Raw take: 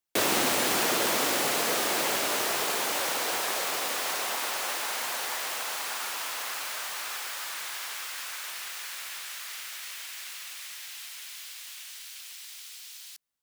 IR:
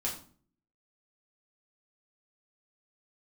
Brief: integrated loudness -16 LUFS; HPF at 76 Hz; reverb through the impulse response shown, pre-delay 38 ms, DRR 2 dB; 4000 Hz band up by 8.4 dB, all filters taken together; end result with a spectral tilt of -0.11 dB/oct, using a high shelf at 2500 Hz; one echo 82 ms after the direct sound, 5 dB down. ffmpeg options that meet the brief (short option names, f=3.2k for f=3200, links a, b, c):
-filter_complex "[0:a]highpass=76,highshelf=f=2.5k:g=4,equalizer=f=4k:t=o:g=7,aecho=1:1:82:0.562,asplit=2[a][b];[1:a]atrim=start_sample=2205,adelay=38[c];[b][c]afir=irnorm=-1:irlink=0,volume=-5.5dB[d];[a][d]amix=inputs=2:normalize=0,volume=4.5dB"